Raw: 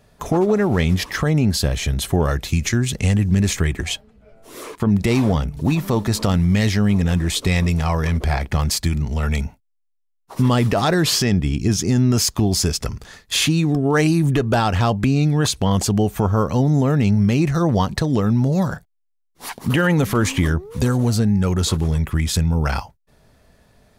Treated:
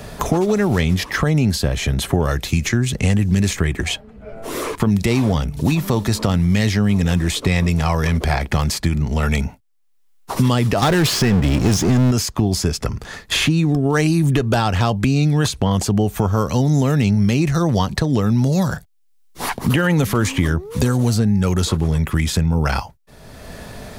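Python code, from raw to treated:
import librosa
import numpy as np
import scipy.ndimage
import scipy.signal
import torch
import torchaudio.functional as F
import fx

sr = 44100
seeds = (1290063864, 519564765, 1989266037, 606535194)

y = fx.power_curve(x, sr, exponent=0.5, at=(10.82, 12.11))
y = fx.band_squash(y, sr, depth_pct=70)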